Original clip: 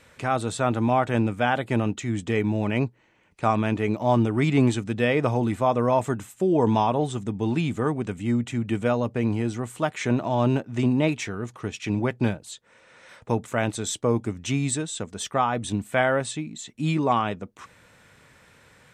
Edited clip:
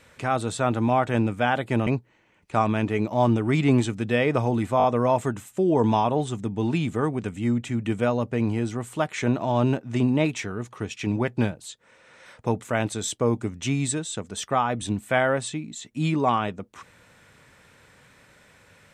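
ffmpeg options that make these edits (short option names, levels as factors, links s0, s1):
-filter_complex "[0:a]asplit=5[s0][s1][s2][s3][s4];[s0]atrim=end=1.872[s5];[s1]atrim=start=2.758:end=5.692[s6];[s2]atrim=start=5.668:end=5.692[s7];[s3]atrim=start=5.668:end=5.692[s8];[s4]atrim=start=5.668[s9];[s5][s6]acrossfade=d=0.004:c1=hsin:c2=hsin[s10];[s10][s7]acrossfade=d=0.004:c1=hsin:c2=hsin[s11];[s11][s8]acrossfade=d=0.004:c1=hsin:c2=hsin[s12];[s12][s9]acrossfade=d=0.004:c1=hsin:c2=hsin"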